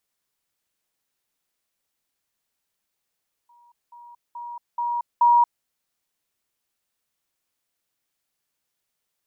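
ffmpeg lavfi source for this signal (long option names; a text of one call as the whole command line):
ffmpeg -f lavfi -i "aevalsrc='pow(10,(-52.5+10*floor(t/0.43))/20)*sin(2*PI*954*t)*clip(min(mod(t,0.43),0.23-mod(t,0.43))/0.005,0,1)':duration=2.15:sample_rate=44100" out.wav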